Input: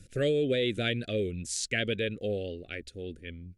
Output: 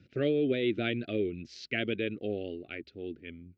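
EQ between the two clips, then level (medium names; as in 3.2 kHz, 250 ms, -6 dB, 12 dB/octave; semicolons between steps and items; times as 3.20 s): dynamic bell 330 Hz, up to +5 dB, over -48 dBFS, Q 5.1; distance through air 230 m; cabinet simulation 160–5200 Hz, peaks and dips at 180 Hz -5 dB, 510 Hz -9 dB, 1.7 kHz -6 dB, 3.5 kHz -4 dB; +2.5 dB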